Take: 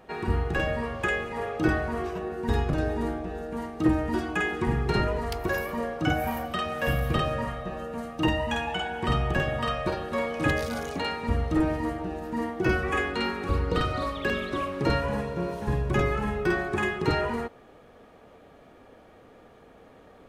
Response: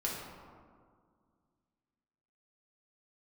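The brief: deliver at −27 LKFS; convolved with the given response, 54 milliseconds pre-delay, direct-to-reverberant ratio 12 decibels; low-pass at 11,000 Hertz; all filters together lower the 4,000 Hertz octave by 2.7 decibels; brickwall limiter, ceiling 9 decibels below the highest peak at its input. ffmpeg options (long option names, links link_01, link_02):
-filter_complex "[0:a]lowpass=11000,equalizer=frequency=4000:width_type=o:gain=-4,alimiter=limit=-19dB:level=0:latency=1,asplit=2[link_01][link_02];[1:a]atrim=start_sample=2205,adelay=54[link_03];[link_02][link_03]afir=irnorm=-1:irlink=0,volume=-16dB[link_04];[link_01][link_04]amix=inputs=2:normalize=0,volume=2.5dB"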